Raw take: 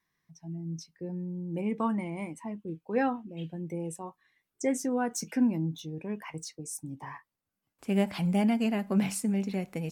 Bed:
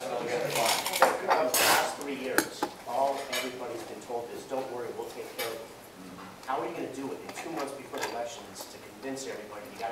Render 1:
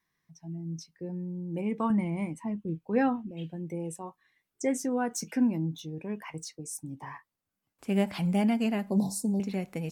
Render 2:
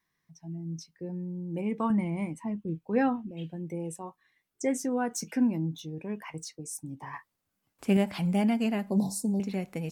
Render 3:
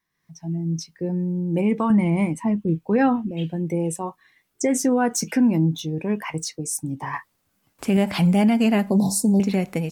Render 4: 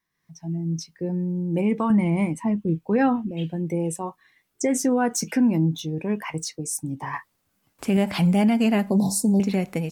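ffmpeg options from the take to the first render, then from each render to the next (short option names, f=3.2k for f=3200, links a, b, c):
-filter_complex "[0:a]asettb=1/sr,asplit=3[a][b][c];[a]atrim=end=1.904[d];[b]atrim=start=1.9:end=3.31,asetpts=PTS-STARTPTS,afade=t=in:d=0.004:c=qsin,afade=t=out:st=1.406:d=0.004:c=qsin,bass=f=250:g=8,treble=f=4k:g=-1[e];[c]atrim=start=3.306[f];[d][e]acrossfade=d=0.004:c1=hsin:c2=qsin[g];[g][f]acrossfade=d=0.004:c1=qsin:c2=hsin,asettb=1/sr,asplit=3[h][i][j];[h]atrim=end=8.904[k];[i]atrim=start=8.9:end=9.4,asetpts=PTS-STARTPTS,afade=t=in:d=0.004:c=qsin,afade=t=out:st=0.496:d=0.004:c=qsin,asuperstop=centerf=2000:order=20:qfactor=0.72[l];[j]atrim=start=9.396[m];[k][l]acrossfade=d=0.004:c1=hsin:c2=qsin[n];[n][m]acrossfade=d=0.004:c1=qsin:c2=hsin"
-filter_complex "[0:a]asettb=1/sr,asplit=3[a][b][c];[a]atrim=end=7.134[d];[b]atrim=start=7.13:end=7.97,asetpts=PTS-STARTPTS,afade=t=in:d=0.004:c=qsin,afade=t=out:st=0.836:d=0.004:c=qsin,acontrast=28[e];[c]atrim=start=7.966[f];[d][e]acrossfade=d=0.004:c1=hsin:c2=qsin[g];[g][f]acrossfade=d=0.004:c1=qsin:c2=hsin"
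-af "alimiter=limit=-23dB:level=0:latency=1:release=89,dynaudnorm=f=100:g=5:m=11.5dB"
-af "volume=-1.5dB"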